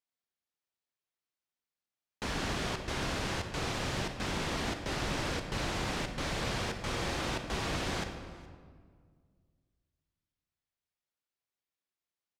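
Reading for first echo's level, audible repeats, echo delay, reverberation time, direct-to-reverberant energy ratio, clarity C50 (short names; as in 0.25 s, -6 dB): -22.5 dB, 1, 0.419 s, 1.8 s, 6.0 dB, 7.0 dB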